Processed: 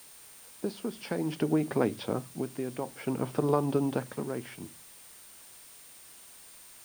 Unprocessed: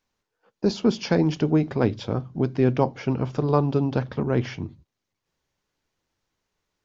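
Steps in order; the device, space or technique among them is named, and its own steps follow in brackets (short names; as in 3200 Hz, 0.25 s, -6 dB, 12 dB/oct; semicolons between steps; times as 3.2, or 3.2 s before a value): medium wave at night (BPF 190–3800 Hz; compressor, threshold -21 dBFS, peak gain reduction 7 dB; tremolo 0.56 Hz, depth 65%; whine 9000 Hz -54 dBFS; white noise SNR 20 dB)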